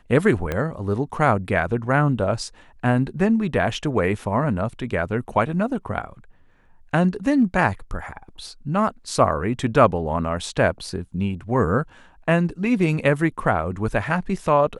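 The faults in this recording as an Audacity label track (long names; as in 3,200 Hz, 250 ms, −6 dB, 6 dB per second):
0.520000	0.520000	click −12 dBFS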